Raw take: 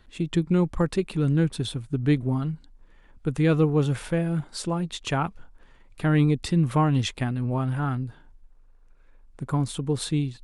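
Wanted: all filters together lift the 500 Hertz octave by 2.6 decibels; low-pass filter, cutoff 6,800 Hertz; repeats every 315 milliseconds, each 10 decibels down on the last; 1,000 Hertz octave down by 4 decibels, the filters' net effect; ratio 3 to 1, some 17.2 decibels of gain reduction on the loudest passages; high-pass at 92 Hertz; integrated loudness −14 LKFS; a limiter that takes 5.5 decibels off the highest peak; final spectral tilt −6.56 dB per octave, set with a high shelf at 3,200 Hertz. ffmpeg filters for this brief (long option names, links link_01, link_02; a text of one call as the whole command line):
ffmpeg -i in.wav -af "highpass=92,lowpass=6800,equalizer=frequency=500:width_type=o:gain=4.5,equalizer=frequency=1000:width_type=o:gain=-6.5,highshelf=frequency=3200:gain=-3.5,acompressor=threshold=-40dB:ratio=3,alimiter=level_in=7dB:limit=-24dB:level=0:latency=1,volume=-7dB,aecho=1:1:315|630|945|1260:0.316|0.101|0.0324|0.0104,volume=27dB" out.wav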